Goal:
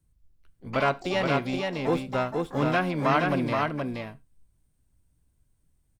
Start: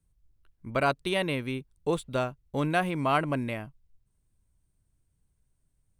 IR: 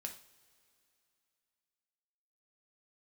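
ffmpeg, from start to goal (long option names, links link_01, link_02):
-filter_complex "[0:a]acrossover=split=3100[link_01][link_02];[link_02]acompressor=threshold=-52dB:ratio=4:attack=1:release=60[link_03];[link_01][link_03]amix=inputs=2:normalize=0,asplit=3[link_04][link_05][link_06];[link_05]asetrate=66075,aresample=44100,atempo=0.66742,volume=-10dB[link_07];[link_06]asetrate=88200,aresample=44100,atempo=0.5,volume=-13dB[link_08];[link_04][link_07][link_08]amix=inputs=3:normalize=0,aecho=1:1:474:0.668,asplit=2[link_09][link_10];[1:a]atrim=start_sample=2205,atrim=end_sample=6174,asetrate=52920,aresample=44100[link_11];[link_10][link_11]afir=irnorm=-1:irlink=0,volume=-1.5dB[link_12];[link_09][link_12]amix=inputs=2:normalize=0,volume=-2dB"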